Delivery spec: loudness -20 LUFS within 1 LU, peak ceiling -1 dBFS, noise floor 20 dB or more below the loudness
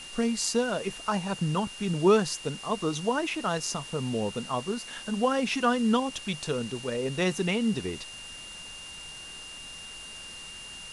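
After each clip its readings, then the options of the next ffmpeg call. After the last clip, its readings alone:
steady tone 2.8 kHz; tone level -42 dBFS; noise floor -43 dBFS; noise floor target -49 dBFS; loudness -28.5 LUFS; peak level -11.5 dBFS; loudness target -20.0 LUFS
-> -af "bandreject=f=2800:w=30"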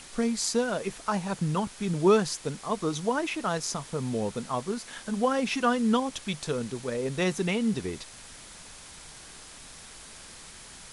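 steady tone not found; noise floor -47 dBFS; noise floor target -49 dBFS
-> -af "afftdn=nr=6:nf=-47"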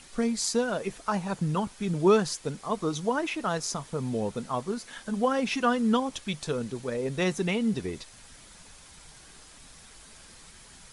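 noise floor -51 dBFS; loudness -29.0 LUFS; peak level -11.5 dBFS; loudness target -20.0 LUFS
-> -af "volume=2.82"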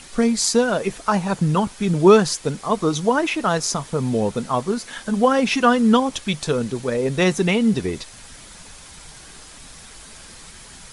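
loudness -19.5 LUFS; peak level -2.5 dBFS; noise floor -42 dBFS

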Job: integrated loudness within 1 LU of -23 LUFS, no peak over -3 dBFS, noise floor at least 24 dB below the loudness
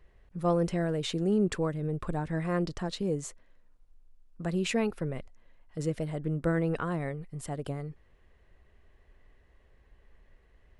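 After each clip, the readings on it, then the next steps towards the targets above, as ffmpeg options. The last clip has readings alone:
loudness -31.5 LUFS; peak level -16.0 dBFS; loudness target -23.0 LUFS
-> -af "volume=2.66"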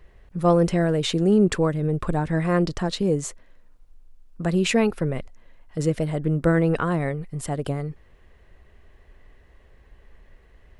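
loudness -23.0 LUFS; peak level -8.0 dBFS; noise floor -54 dBFS

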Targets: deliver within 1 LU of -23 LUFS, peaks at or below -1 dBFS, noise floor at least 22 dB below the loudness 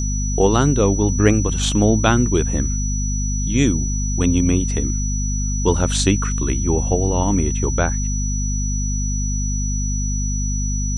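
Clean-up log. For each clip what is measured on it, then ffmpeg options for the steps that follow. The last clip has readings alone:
hum 50 Hz; highest harmonic 250 Hz; hum level -19 dBFS; steady tone 5.9 kHz; tone level -27 dBFS; loudness -19.5 LUFS; peak level -1.0 dBFS; loudness target -23.0 LUFS
-> -af "bandreject=f=50:t=h:w=4,bandreject=f=100:t=h:w=4,bandreject=f=150:t=h:w=4,bandreject=f=200:t=h:w=4,bandreject=f=250:t=h:w=4"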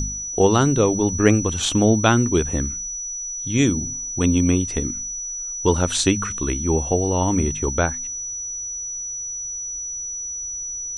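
hum not found; steady tone 5.9 kHz; tone level -27 dBFS
-> -af "bandreject=f=5900:w=30"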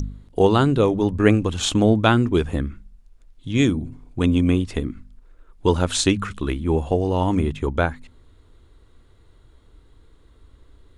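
steady tone not found; loudness -20.5 LUFS; peak level -1.5 dBFS; loudness target -23.0 LUFS
-> -af "volume=0.75"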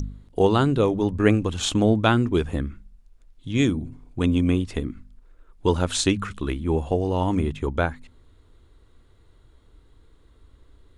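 loudness -23.0 LUFS; peak level -4.0 dBFS; noise floor -56 dBFS

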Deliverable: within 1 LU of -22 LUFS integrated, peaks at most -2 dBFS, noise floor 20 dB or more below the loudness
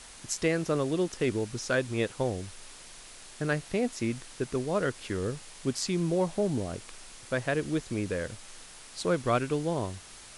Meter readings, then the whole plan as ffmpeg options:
noise floor -49 dBFS; noise floor target -51 dBFS; loudness -31.0 LUFS; peak level -13.5 dBFS; loudness target -22.0 LUFS
-> -af "afftdn=nr=6:nf=-49"
-af "volume=2.82"

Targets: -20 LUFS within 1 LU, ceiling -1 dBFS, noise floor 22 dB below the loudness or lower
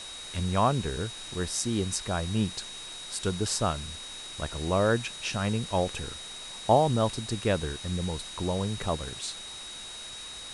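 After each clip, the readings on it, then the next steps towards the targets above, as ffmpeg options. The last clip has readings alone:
steady tone 3.8 kHz; tone level -41 dBFS; noise floor -42 dBFS; noise floor target -52 dBFS; loudness -30.0 LUFS; peak level -9.5 dBFS; loudness target -20.0 LUFS
-> -af "bandreject=f=3800:w=30"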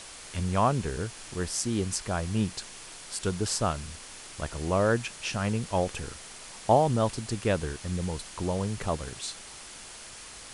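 steady tone not found; noise floor -45 dBFS; noise floor target -52 dBFS
-> -af "afftdn=nr=7:nf=-45"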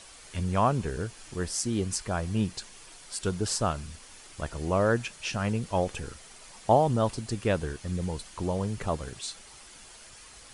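noise floor -50 dBFS; noise floor target -52 dBFS
-> -af "afftdn=nr=6:nf=-50"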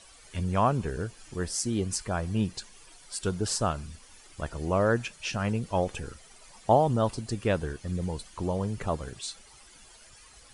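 noise floor -54 dBFS; loudness -30.0 LUFS; peak level -9.5 dBFS; loudness target -20.0 LUFS
-> -af "volume=3.16,alimiter=limit=0.891:level=0:latency=1"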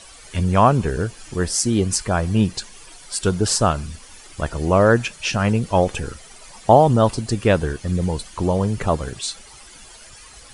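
loudness -20.0 LUFS; peak level -1.0 dBFS; noise floor -44 dBFS

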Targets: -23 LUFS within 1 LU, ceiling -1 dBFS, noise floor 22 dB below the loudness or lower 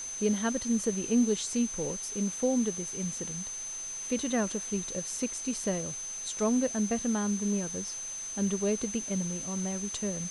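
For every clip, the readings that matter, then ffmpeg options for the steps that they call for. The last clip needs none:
steady tone 6.2 kHz; tone level -36 dBFS; noise floor -39 dBFS; noise floor target -53 dBFS; loudness -31.0 LUFS; peak level -16.5 dBFS; loudness target -23.0 LUFS
-> -af "bandreject=f=6200:w=30"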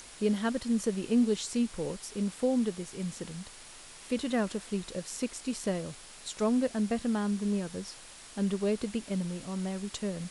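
steady tone not found; noise floor -50 dBFS; noise floor target -54 dBFS
-> -af "afftdn=nr=6:nf=-50"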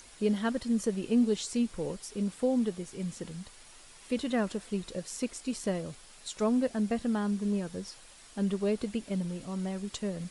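noise floor -54 dBFS; loudness -32.0 LUFS; peak level -17.0 dBFS; loudness target -23.0 LUFS
-> -af "volume=2.82"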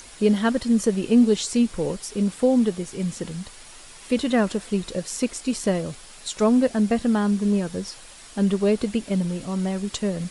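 loudness -23.0 LUFS; peak level -8.0 dBFS; noise floor -45 dBFS

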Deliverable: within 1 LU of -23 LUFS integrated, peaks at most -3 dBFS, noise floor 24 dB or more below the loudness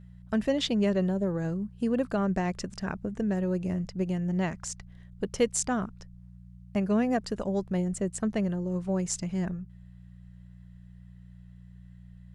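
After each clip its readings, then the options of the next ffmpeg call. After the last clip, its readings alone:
hum 60 Hz; highest harmonic 180 Hz; hum level -43 dBFS; loudness -30.0 LUFS; peak level -11.0 dBFS; loudness target -23.0 LUFS
-> -af "bandreject=f=60:t=h:w=4,bandreject=f=120:t=h:w=4,bandreject=f=180:t=h:w=4"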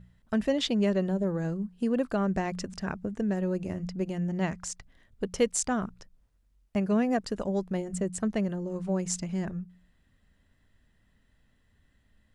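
hum not found; loudness -30.5 LUFS; peak level -11.0 dBFS; loudness target -23.0 LUFS
-> -af "volume=2.37"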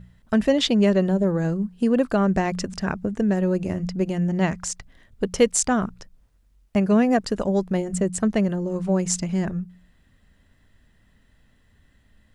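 loudness -23.0 LUFS; peak level -3.5 dBFS; noise floor -60 dBFS

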